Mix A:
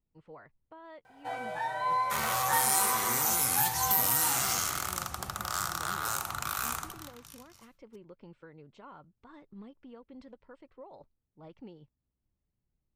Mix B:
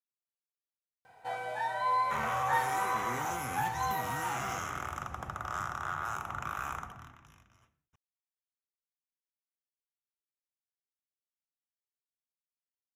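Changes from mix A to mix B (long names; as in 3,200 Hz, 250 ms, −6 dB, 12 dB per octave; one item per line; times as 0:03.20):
speech: muted
second sound: add moving average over 10 samples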